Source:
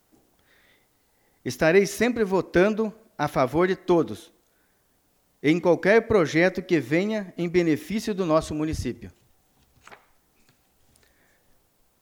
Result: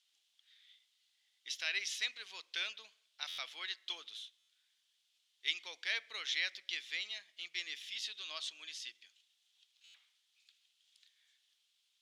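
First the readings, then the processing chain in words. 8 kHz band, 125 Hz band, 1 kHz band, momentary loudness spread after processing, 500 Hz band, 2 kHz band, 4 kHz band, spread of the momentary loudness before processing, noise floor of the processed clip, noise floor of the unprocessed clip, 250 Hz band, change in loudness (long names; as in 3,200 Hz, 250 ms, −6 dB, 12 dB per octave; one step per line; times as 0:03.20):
−8.5 dB, below −40 dB, −26.0 dB, 12 LU, −39.0 dB, −12.0 dB, +1.0 dB, 11 LU, −78 dBFS, −67 dBFS, below −40 dB, −16.5 dB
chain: four-pole ladder band-pass 3,700 Hz, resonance 60%
buffer that repeats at 0:03.28/0:04.38/0:09.84, samples 512, times 8
level +6.5 dB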